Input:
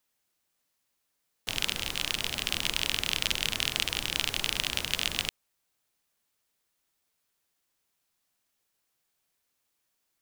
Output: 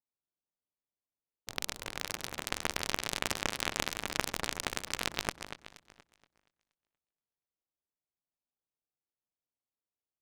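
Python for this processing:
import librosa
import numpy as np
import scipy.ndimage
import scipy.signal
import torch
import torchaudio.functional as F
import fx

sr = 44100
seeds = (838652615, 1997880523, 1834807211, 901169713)

p1 = fx.wiener(x, sr, points=25)
p2 = fx.cheby_harmonics(p1, sr, harmonics=(4, 7), levels_db=(-13, -14), full_scale_db=-4.5)
p3 = p2 + fx.echo_wet_lowpass(p2, sr, ms=237, feedback_pct=40, hz=3400.0, wet_db=-6, dry=0)
p4 = fx.noise_mod_delay(p3, sr, seeds[0], noise_hz=2100.0, depth_ms=0.044)
y = p4 * librosa.db_to_amplitude(-6.0)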